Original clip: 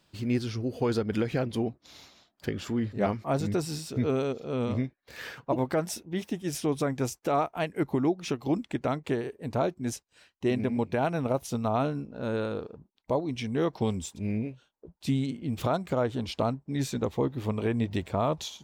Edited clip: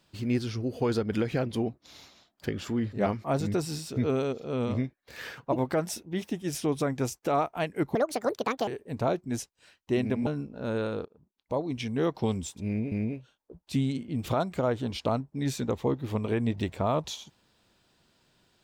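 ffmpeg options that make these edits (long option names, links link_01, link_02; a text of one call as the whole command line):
ffmpeg -i in.wav -filter_complex "[0:a]asplit=6[link_01][link_02][link_03][link_04][link_05][link_06];[link_01]atrim=end=7.954[link_07];[link_02]atrim=start=7.95:end=9.21,asetpts=PTS-STARTPTS,asetrate=76734,aresample=44100,atrim=end_sample=31934,asetpts=PTS-STARTPTS[link_08];[link_03]atrim=start=9.206:end=10.802[link_09];[link_04]atrim=start=11.848:end=12.64,asetpts=PTS-STARTPTS,afade=type=out:start_time=0.788:duration=0.004:curve=hsin:silence=0.0749894[link_10];[link_05]atrim=start=12.64:end=14.502,asetpts=PTS-STARTPTS,afade=type=in:duration=0.67:silence=0.0749894[link_11];[link_06]atrim=start=14.248[link_12];[link_07][link_08]acrossfade=duration=0.004:curve1=hsin:curve2=hsin[link_13];[link_13][link_09]acrossfade=duration=0.004:curve1=hsin:curve2=hsin[link_14];[link_10][link_11]concat=n=2:v=0:a=1[link_15];[link_14][link_15]acrossfade=duration=0.004:curve1=hsin:curve2=hsin[link_16];[link_16][link_12]acrossfade=duration=0.004:curve1=hsin:curve2=hsin" out.wav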